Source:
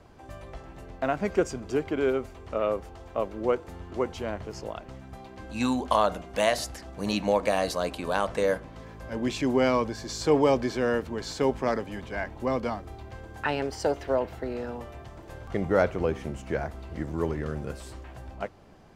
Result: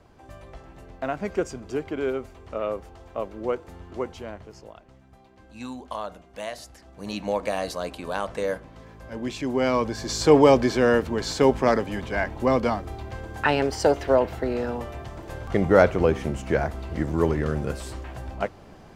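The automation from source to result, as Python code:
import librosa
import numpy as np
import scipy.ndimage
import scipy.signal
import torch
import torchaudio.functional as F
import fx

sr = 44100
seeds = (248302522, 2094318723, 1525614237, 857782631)

y = fx.gain(x, sr, db=fx.line((4.0, -1.5), (4.81, -10.0), (6.63, -10.0), (7.34, -2.0), (9.49, -2.0), (10.11, 6.5)))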